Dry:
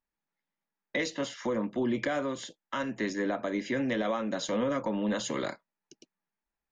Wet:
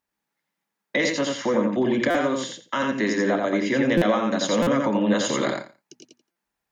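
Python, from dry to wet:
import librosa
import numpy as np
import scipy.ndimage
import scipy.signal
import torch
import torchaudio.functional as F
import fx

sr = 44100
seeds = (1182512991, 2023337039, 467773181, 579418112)

p1 = scipy.signal.sosfilt(scipy.signal.butter(2, 65.0, 'highpass', fs=sr, output='sos'), x)
p2 = fx.hum_notches(p1, sr, base_hz=60, count=4)
p3 = p2 + fx.echo_feedback(p2, sr, ms=86, feedback_pct=18, wet_db=-3.5, dry=0)
p4 = fx.buffer_glitch(p3, sr, at_s=(2.1, 3.97, 4.62, 6.31), block=256, repeats=7)
y = p4 * 10.0 ** (7.5 / 20.0)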